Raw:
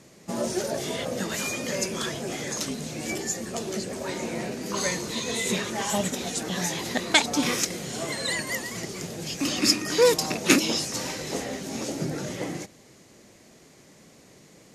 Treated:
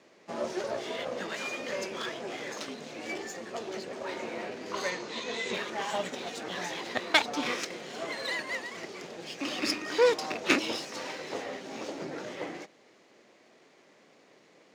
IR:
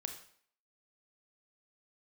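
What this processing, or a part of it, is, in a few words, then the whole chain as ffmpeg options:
crystal radio: -filter_complex "[0:a]highpass=360,lowpass=3.5k,aeval=exprs='if(lt(val(0),0),0.447*val(0),val(0))':c=same,highpass=f=99:w=0.5412,highpass=f=99:w=1.3066,asettb=1/sr,asplit=3[a][b][c];[a]atrim=end=4.904[d];[b]atrim=start=4.9:end=5.54,asetpts=PTS-STARTPTS,afade=t=in:d=0.004:c=qsin,afade=t=out:st=0.636:d=0.004:c=qsin,lowpass=f=7.8k:w=0.5412,lowpass=f=7.8k:w=1.3066[e];[c]atrim=start=5.536[f];[d][e]acrossfade=d=0.004:c1=hsin:c2=qsin[g];[g][f]acrossfade=d=0.004:c1=qsin:c2=hsin"

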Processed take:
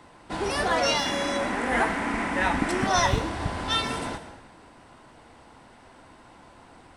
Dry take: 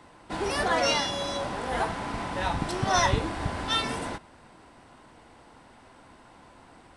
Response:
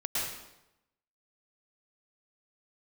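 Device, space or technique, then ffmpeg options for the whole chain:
saturated reverb return: -filter_complex "[0:a]asettb=1/sr,asplit=3[a][b][c];[a]atrim=end=1.064[d];[b]atrim=start=1.06:end=2.87,asetpts=PTS-STARTPTS,afade=t=in:d=0.004:c=qsin,afade=t=out:st=1.806:d=0.004:c=qsin,equalizer=f=125:t=o:w=1:g=-9,equalizer=f=250:t=o:w=1:g=10,equalizer=f=2k:t=o:w=1:g=11,equalizer=f=4k:t=o:w=1:g=-6,equalizer=f=8k:t=o:w=1:g=4[e];[c]atrim=start=2.866[f];[d][e]acrossfade=d=0.004:c1=hsin:c2=qsin[g];[g][f]acrossfade=d=0.004:c1=qsin:c2=hsin,asplit=2[h][i];[1:a]atrim=start_sample=2205[j];[i][j]afir=irnorm=-1:irlink=0,asoftclip=type=tanh:threshold=-20.5dB,volume=-14dB[k];[h][k]amix=inputs=2:normalize=0"

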